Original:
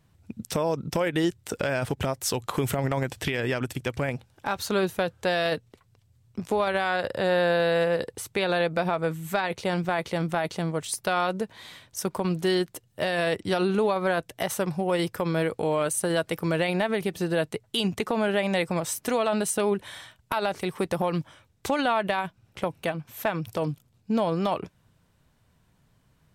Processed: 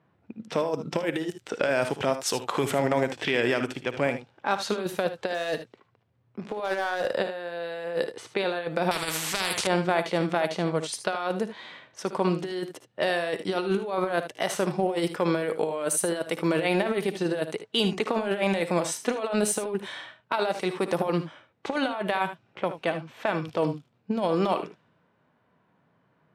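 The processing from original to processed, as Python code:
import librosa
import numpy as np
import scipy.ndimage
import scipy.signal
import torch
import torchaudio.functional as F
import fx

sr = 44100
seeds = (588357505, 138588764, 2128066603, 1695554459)

y = scipy.signal.sosfilt(scipy.signal.butter(2, 260.0, 'highpass', fs=sr, output='sos'), x)
y = fx.env_lowpass(y, sr, base_hz=1700.0, full_db=-23.0)
y = fx.hpss(y, sr, part='percussive', gain_db=-6)
y = fx.over_compress(y, sr, threshold_db=-29.0, ratio=-0.5)
y = fx.overload_stage(y, sr, gain_db=25.5, at=(5.34, 7.06))
y = fx.room_early_taps(y, sr, ms=(57, 76), db=(-15.0, -12.0))
y = fx.spectral_comp(y, sr, ratio=4.0, at=(8.91, 9.67))
y = y * librosa.db_to_amplitude(4.0)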